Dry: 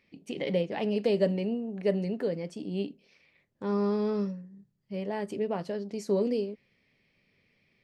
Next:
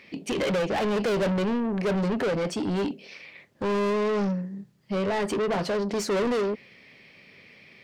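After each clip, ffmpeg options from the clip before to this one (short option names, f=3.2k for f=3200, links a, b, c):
-filter_complex "[0:a]lowshelf=f=260:g=8.5,asplit=2[a][b];[b]highpass=f=720:p=1,volume=33dB,asoftclip=type=tanh:threshold=-11.5dB[c];[a][c]amix=inputs=2:normalize=0,lowpass=f=5.1k:p=1,volume=-6dB,volume=-7dB"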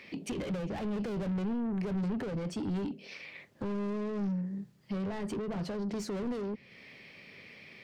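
-filter_complex "[0:a]acrossover=split=240[a][b];[b]acompressor=threshold=-42dB:ratio=3[c];[a][c]amix=inputs=2:normalize=0,asoftclip=type=tanh:threshold=-28dB"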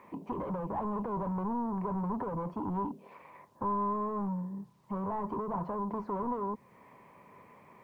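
-af "lowpass=f=1k:t=q:w=11,acrusher=bits=11:mix=0:aa=0.000001,volume=-2.5dB"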